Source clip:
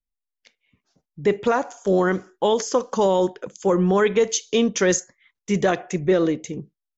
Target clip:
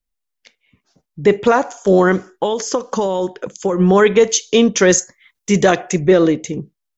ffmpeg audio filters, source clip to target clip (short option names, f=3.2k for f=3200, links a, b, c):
-filter_complex "[0:a]asplit=3[a][b][c];[a]afade=t=out:st=2.32:d=0.02[d];[b]acompressor=threshold=-22dB:ratio=6,afade=t=in:st=2.32:d=0.02,afade=t=out:st=3.79:d=0.02[e];[c]afade=t=in:st=3.79:d=0.02[f];[d][e][f]amix=inputs=3:normalize=0,asettb=1/sr,asplit=3[g][h][i];[g]atrim=end=4.974[j];[h]atrim=start=4.97:end=6.02,asetpts=PTS-STARTPTS,afade=t=in:d=0.004:c=qsin,afade=t=out:st=1.046:d=0.004:c=qsin,highshelf=f=5.5k:g=8[k];[i]atrim=start=6.016[l];[j][k]acrossfade=d=0.004:c1=hsin:c2=qsin[m];[m][l]acrossfade=d=0.004:c1=qsin:c2=hsin,volume=7dB"